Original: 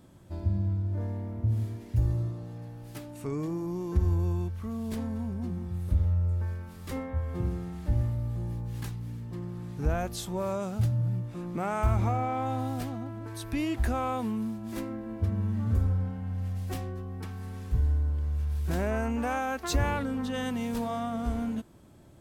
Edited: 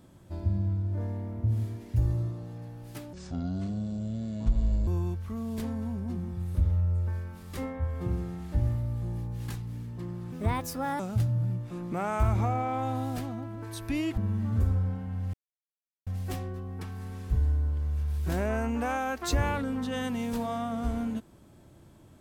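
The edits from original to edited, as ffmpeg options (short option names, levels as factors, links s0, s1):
-filter_complex "[0:a]asplit=7[s0][s1][s2][s3][s4][s5][s6];[s0]atrim=end=3.134[s7];[s1]atrim=start=3.13:end=4.21,asetpts=PTS-STARTPTS,asetrate=27342,aresample=44100,atrim=end_sample=76819,asetpts=PTS-STARTPTS[s8];[s2]atrim=start=4.206:end=9.664[s9];[s3]atrim=start=9.66:end=10.63,asetpts=PTS-STARTPTS,asetrate=63504,aresample=44100,atrim=end_sample=29706,asetpts=PTS-STARTPTS[s10];[s4]atrim=start=10.626:end=13.812[s11];[s5]atrim=start=15.318:end=16.48,asetpts=PTS-STARTPTS,afade=t=out:st=1.158:d=0.004:c=hsin,apad=pad_dur=0.73[s12];[s6]atrim=start=16.48,asetpts=PTS-STARTPTS,afade=t=in:d=0.004:c=hsin[s13];[s7][s8]acrossfade=d=0.004:c1=hsin:c2=hsin[s14];[s14][s9]acrossfade=d=0.004:c1=hsin:c2=hsin[s15];[s15][s10]acrossfade=d=0.004:c1=hsin:c2=hsin[s16];[s16][s11]acrossfade=d=0.004:c1=hsin:c2=hsin[s17];[s12][s13]concat=n=2:v=0:a=1[s18];[s17][s18]acrossfade=d=0.004:c1=hsin:c2=hsin"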